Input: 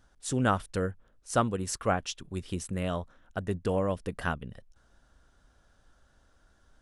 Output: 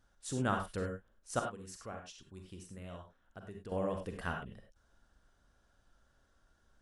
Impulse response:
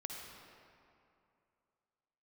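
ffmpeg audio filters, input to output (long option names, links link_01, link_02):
-filter_complex "[0:a]asettb=1/sr,asplit=3[link_01][link_02][link_03];[link_01]atrim=end=1.394[link_04];[link_02]atrim=start=1.39:end=3.72,asetpts=PTS-STARTPTS,afade=type=in:duration=0.004:curve=qsin,afade=type=out:start_time=2.326:duration=0.004:curve=qsin,acompressor=threshold=-55dB:ratio=1.5[link_05];[link_03]atrim=start=3.716[link_06];[link_04][link_05]acrossfade=duration=0.004:curve1=hsin:curve2=qsin[link_07];[link_07][link_06]acrossfade=duration=0.004:curve1=qsin:curve2=hsin[link_08];[1:a]atrim=start_sample=2205,atrim=end_sample=6174,asetrate=57330,aresample=44100[link_09];[link_08][link_09]afir=irnorm=-1:irlink=0,volume=-1dB"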